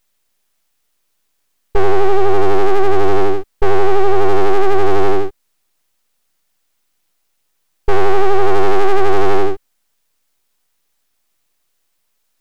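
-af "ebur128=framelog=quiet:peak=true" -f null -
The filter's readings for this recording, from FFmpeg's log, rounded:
Integrated loudness:
  I:         -16.3 LUFS
  Threshold: -29.4 LUFS
Loudness range:
  LRA:         8.1 LU
  Threshold: -38.6 LUFS
  LRA low:   -24.0 LUFS
  LRA high:  -15.8 LUFS
True peak:
  Peak:       -3.7 dBFS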